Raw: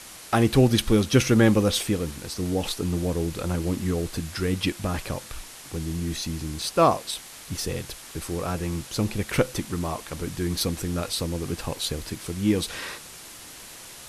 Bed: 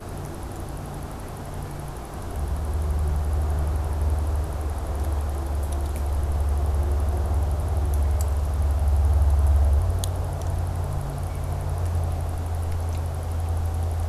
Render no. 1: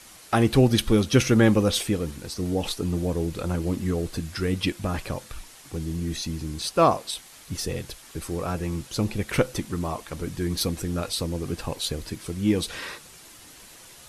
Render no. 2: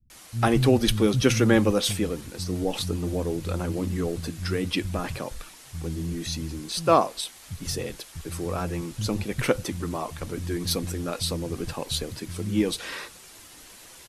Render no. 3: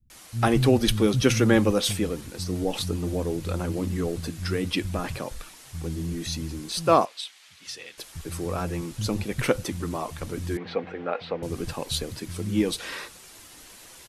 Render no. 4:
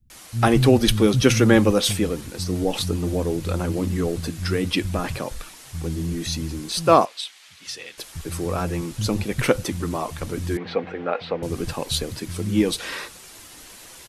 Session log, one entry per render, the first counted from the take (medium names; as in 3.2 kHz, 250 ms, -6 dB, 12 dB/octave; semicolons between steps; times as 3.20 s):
noise reduction 6 dB, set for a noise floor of -43 dBFS
bands offset in time lows, highs 100 ms, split 160 Hz
7.05–7.98 s: band-pass filter 2.8 kHz, Q 0.97; 10.57–11.43 s: cabinet simulation 260–2800 Hz, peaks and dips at 310 Hz -7 dB, 480 Hz +6 dB, 770 Hz +9 dB, 1.5 kHz +4 dB, 2.1 kHz +4 dB
trim +4 dB